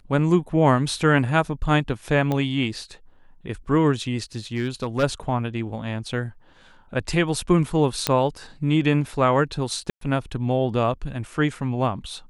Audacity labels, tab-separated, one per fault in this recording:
2.320000	2.320000	pop -13 dBFS
4.560000	5.040000	clipped -17 dBFS
8.070000	8.070000	pop -4 dBFS
9.900000	10.010000	gap 0.113 s

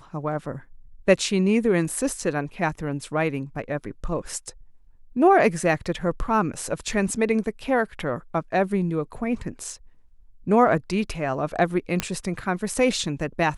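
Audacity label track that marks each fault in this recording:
12.000000	12.000000	pop -7 dBFS

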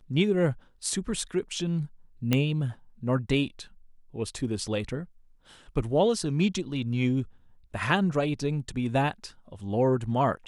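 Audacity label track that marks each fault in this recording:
2.330000	2.330000	pop -10 dBFS

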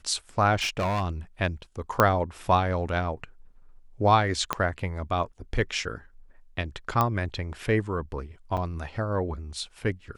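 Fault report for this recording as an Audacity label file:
0.550000	1.090000	clipped -23 dBFS
2.000000	2.000000	pop -6 dBFS
4.530000	4.530000	pop -10 dBFS
7.010000	7.010000	pop -10 dBFS
8.570000	8.580000	gap 5.2 ms

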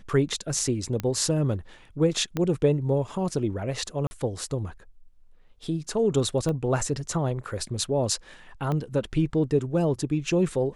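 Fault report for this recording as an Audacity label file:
1.000000	1.000000	pop -15 dBFS
2.370000	2.370000	pop -14 dBFS
4.070000	4.110000	gap 40 ms
6.490000	6.490000	pop -18 dBFS
8.720000	8.720000	pop -18 dBFS

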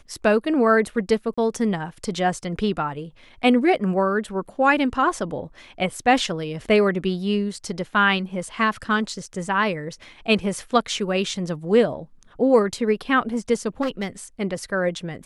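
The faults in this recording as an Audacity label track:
1.340000	1.380000	gap 35 ms
13.810000	14.080000	clipped -20 dBFS

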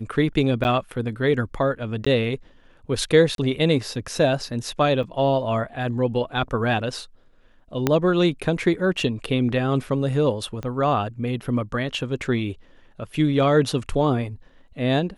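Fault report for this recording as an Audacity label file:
0.640000	0.650000	gap 9.6 ms
2.050000	2.060000	gap 15 ms
3.350000	3.380000	gap 32 ms
5.030000	5.030000	gap 4.8 ms
7.870000	7.870000	pop -5 dBFS
10.630000	10.630000	pop -18 dBFS

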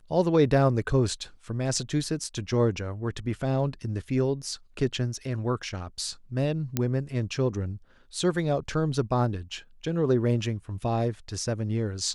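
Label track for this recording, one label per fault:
6.770000	6.770000	pop -10 dBFS

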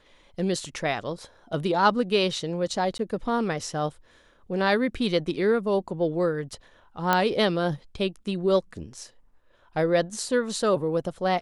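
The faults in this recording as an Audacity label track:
2.980000	2.990000	gap 12 ms
7.130000	7.130000	pop -7 dBFS

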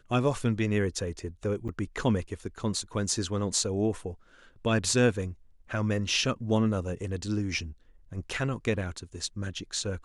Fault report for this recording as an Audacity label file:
1.680000	1.690000	gap 8.2 ms

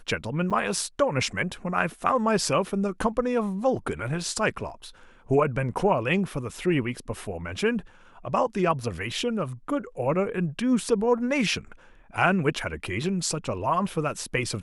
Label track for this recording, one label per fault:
0.500000	0.510000	gap 6.6 ms

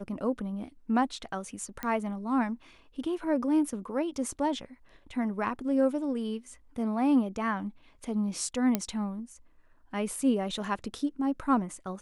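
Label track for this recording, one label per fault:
1.830000	1.830000	pop -19 dBFS
8.750000	8.750000	pop -12 dBFS

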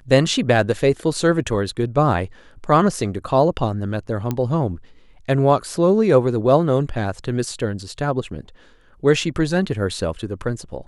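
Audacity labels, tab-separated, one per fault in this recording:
4.310000	4.310000	pop -10 dBFS

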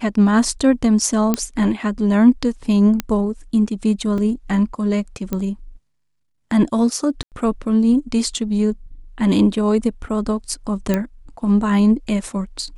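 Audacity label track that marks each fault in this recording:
1.340000	1.340000	pop -4 dBFS
3.000000	3.000000	pop -6 dBFS
4.180000	4.180000	gap 3 ms
5.330000	5.330000	pop -10 dBFS
7.230000	7.320000	gap 88 ms
10.940000	10.940000	pop -6 dBFS

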